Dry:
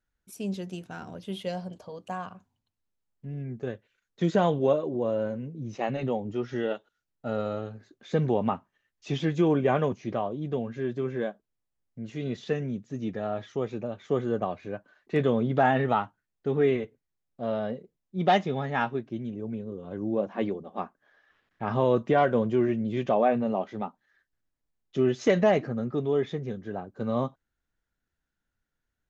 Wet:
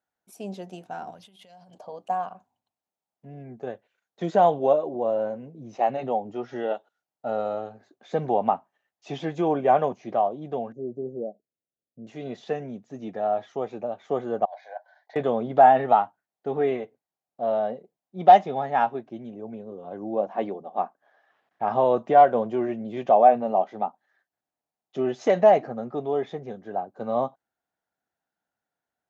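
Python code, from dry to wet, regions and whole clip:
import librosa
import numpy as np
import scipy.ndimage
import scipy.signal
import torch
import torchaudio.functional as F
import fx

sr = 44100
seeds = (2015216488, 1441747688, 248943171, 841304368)

y = fx.chain(x, sr, fx.peak_eq(hz=450.0, db=-13.5, octaves=2.5),
    fx.over_compress(threshold_db=-50.0, ratio=-1.0), at=(1.11, 1.75))
y = fx.chain(y, sr, fx.cheby2_bandstop(low_hz=1400.0, high_hz=3000.0, order=4, stop_db=70),
    fx.air_absorb(metres=180.0), at=(10.72, 12.07))
y = fx.chain(y, sr, fx.highpass(hz=630.0, slope=24),
    fx.over_compress(threshold_db=-41.0, ratio=-0.5),
    fx.fixed_phaser(hz=1800.0, stages=8), at=(14.45, 15.16))
y = scipy.signal.sosfilt(scipy.signal.butter(2, 160.0, 'highpass', fs=sr, output='sos'), y)
y = fx.peak_eq(y, sr, hz=740.0, db=15.0, octaves=0.83)
y = y * 10.0 ** (-4.0 / 20.0)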